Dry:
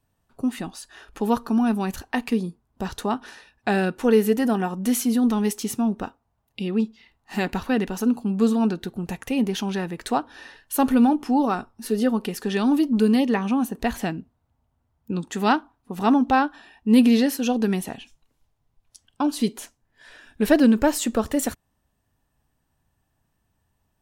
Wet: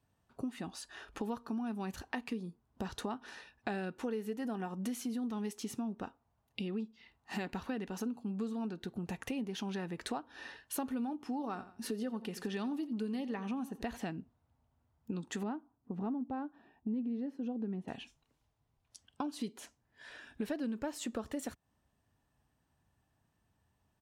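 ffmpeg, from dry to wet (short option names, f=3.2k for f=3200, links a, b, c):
-filter_complex "[0:a]asplit=3[a][b][c];[a]afade=t=out:st=11.3:d=0.02[d];[b]aecho=1:1:86|172:0.141|0.0311,afade=t=in:st=11.3:d=0.02,afade=t=out:st=13.96:d=0.02[e];[c]afade=t=in:st=13.96:d=0.02[f];[d][e][f]amix=inputs=3:normalize=0,asettb=1/sr,asplit=3[g][h][i];[g]atrim=end=15.434[j];[h]atrim=start=15.43:end=17.88,asetpts=PTS-STARTPTS,afade=t=in:d=0.004:c=qsin,afade=t=out:st=2.446:d=0.004:c=qsin,bandpass=f=190:t=q:w=0.55[k];[i]atrim=start=17.876[l];[j][k]acrossfade=d=0.004:c1=hsin:c2=qsin[m];[m][l]acrossfade=d=0.004:c1=qsin:c2=hsin,highpass=53,highshelf=f=11k:g=-11.5,acompressor=threshold=-33dB:ratio=5,volume=-3.5dB"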